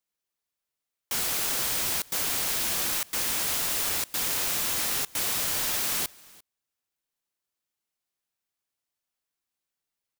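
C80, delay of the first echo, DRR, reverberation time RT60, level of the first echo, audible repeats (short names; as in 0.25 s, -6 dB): none, 0.346 s, none, none, -24.0 dB, 1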